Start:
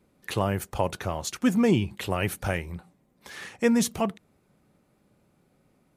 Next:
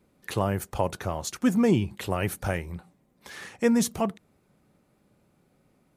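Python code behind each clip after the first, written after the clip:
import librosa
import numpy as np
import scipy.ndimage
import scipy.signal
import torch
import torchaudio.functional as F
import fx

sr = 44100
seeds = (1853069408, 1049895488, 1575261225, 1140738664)

y = fx.dynamic_eq(x, sr, hz=2800.0, q=1.2, threshold_db=-44.0, ratio=4.0, max_db=-4)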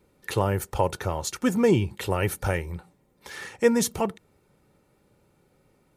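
y = x + 0.38 * np.pad(x, (int(2.2 * sr / 1000.0), 0))[:len(x)]
y = F.gain(torch.from_numpy(y), 2.0).numpy()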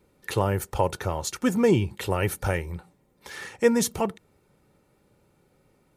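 y = x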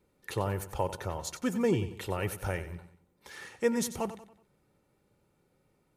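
y = fx.echo_feedback(x, sr, ms=93, feedback_pct=42, wet_db=-13.0)
y = F.gain(torch.from_numpy(y), -7.5).numpy()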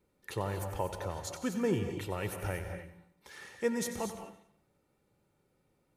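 y = fx.rev_gated(x, sr, seeds[0], gate_ms=270, shape='rising', drr_db=7.0)
y = F.gain(torch.from_numpy(y), -3.5).numpy()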